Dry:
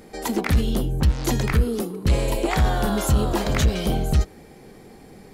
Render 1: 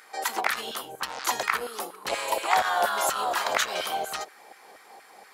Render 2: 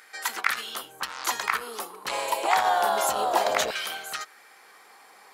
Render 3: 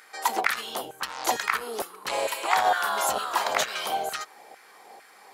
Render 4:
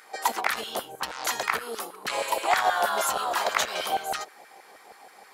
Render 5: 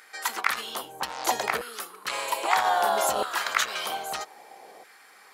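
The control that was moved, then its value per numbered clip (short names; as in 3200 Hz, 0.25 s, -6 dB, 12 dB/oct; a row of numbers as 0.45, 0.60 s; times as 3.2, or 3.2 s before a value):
LFO high-pass, rate: 4.2, 0.27, 2.2, 6.3, 0.62 Hz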